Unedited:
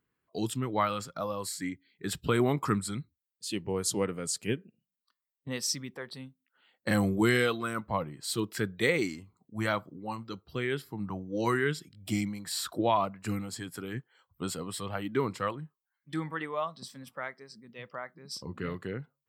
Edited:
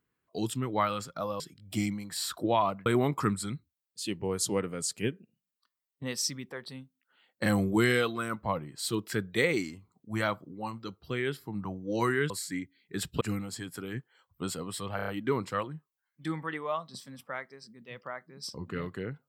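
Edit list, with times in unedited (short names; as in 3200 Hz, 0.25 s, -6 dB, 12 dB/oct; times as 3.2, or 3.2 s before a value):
1.4–2.31 swap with 11.75–13.21
14.96 stutter 0.03 s, 5 plays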